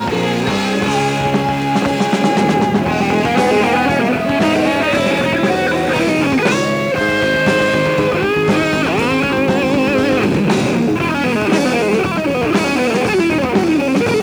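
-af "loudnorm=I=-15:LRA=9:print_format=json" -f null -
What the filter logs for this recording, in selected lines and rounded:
"input_i" : "-14.7",
"input_tp" : "-1.9",
"input_lra" : "0.7",
"input_thresh" : "-24.7",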